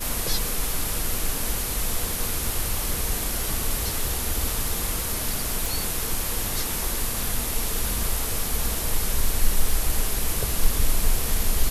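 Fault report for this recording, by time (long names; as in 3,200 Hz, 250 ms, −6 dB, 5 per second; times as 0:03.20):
surface crackle 14 per second −26 dBFS
0:05.66: click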